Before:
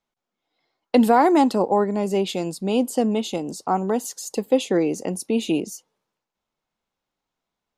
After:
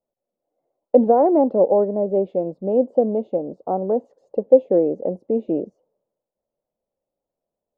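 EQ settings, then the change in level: synth low-pass 570 Hz, resonance Q 4.9; -4.0 dB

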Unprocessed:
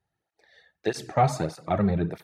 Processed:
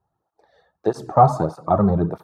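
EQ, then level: dynamic EQ 2600 Hz, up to -6 dB, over -48 dBFS, Q 2.2; resonant high shelf 1500 Hz -10.5 dB, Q 3; +5.5 dB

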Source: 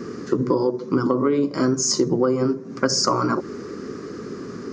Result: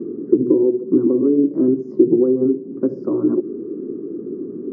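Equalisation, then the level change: Bessel high-pass 190 Hz, order 2; synth low-pass 340 Hz, resonance Q 3.8; -1.0 dB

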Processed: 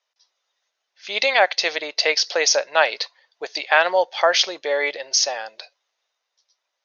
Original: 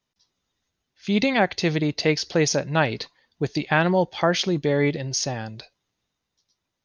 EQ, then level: elliptic band-pass 560–6000 Hz, stop band 70 dB; dynamic EQ 4700 Hz, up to +4 dB, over -36 dBFS, Q 0.76; +5.0 dB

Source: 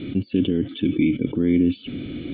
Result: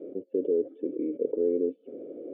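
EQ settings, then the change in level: Butterworth band-pass 500 Hz, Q 2.8; +7.0 dB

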